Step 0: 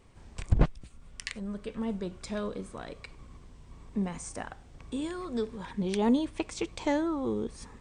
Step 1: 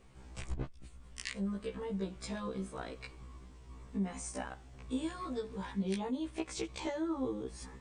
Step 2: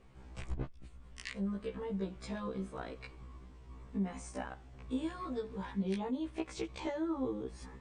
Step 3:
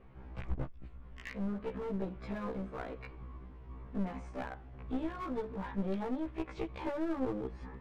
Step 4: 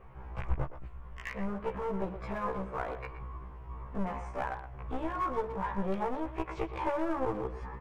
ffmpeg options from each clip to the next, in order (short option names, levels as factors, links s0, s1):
-af "acompressor=threshold=0.0282:ratio=10,afftfilt=real='re*1.73*eq(mod(b,3),0)':imag='im*1.73*eq(mod(b,3),0)':win_size=2048:overlap=0.75,volume=1.12"
-af "highshelf=f=5300:g=-11.5"
-af "lowpass=2100,aeval=exprs='clip(val(0),-1,0.00708)':c=same,volume=1.5"
-filter_complex "[0:a]equalizer=f=250:t=o:w=0.67:g=-11,equalizer=f=1000:t=o:w=0.67:g=6,equalizer=f=4000:t=o:w=0.67:g=-7,asplit=2[s0][s1];[s1]adelay=120,highpass=300,lowpass=3400,asoftclip=type=hard:threshold=0.0266,volume=0.316[s2];[s0][s2]amix=inputs=2:normalize=0,volume=1.78"